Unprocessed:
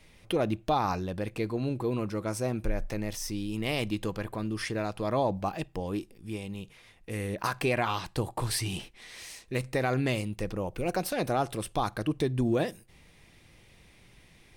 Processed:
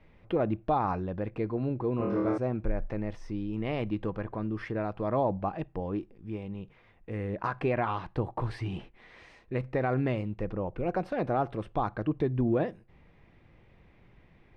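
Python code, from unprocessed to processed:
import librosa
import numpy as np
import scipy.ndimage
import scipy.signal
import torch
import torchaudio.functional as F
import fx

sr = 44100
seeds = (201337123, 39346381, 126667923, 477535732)

y = scipy.signal.sosfilt(scipy.signal.butter(2, 1600.0, 'lowpass', fs=sr, output='sos'), x)
y = fx.room_flutter(y, sr, wall_m=4.3, rt60_s=0.82, at=(1.97, 2.38))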